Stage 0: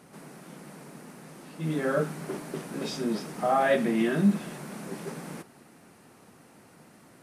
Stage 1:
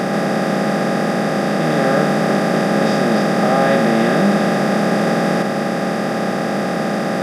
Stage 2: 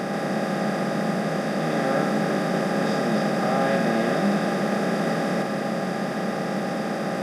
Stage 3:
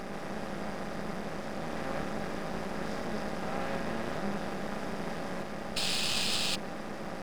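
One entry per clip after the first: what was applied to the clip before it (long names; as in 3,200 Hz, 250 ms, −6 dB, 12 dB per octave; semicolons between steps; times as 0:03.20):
compressor on every frequency bin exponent 0.2; level +3 dB
four-comb reverb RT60 3.4 s, combs from 33 ms, DRR 6.5 dB; level −8.5 dB
sound drawn into the spectrogram noise, 0:05.76–0:06.56, 2,400–5,300 Hz −19 dBFS; half-wave rectification; level −8.5 dB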